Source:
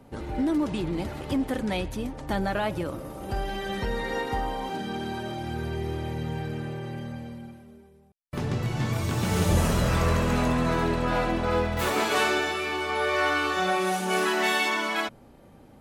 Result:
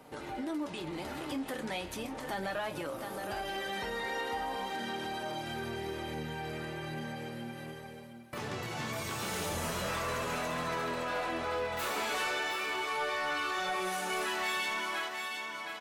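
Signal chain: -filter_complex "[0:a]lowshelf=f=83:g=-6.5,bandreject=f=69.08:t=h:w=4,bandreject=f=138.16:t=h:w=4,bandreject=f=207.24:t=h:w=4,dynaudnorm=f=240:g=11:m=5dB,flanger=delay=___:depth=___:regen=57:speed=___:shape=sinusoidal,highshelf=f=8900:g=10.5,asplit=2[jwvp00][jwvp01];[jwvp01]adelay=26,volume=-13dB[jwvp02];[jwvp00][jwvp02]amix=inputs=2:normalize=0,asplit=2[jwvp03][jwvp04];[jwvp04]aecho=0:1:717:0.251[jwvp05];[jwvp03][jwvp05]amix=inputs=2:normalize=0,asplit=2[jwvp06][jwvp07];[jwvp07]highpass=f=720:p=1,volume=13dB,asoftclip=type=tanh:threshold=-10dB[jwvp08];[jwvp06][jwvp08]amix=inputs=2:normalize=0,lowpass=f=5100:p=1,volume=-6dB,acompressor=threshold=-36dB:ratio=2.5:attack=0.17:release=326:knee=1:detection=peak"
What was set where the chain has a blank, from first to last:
6.5, 7.9, 0.38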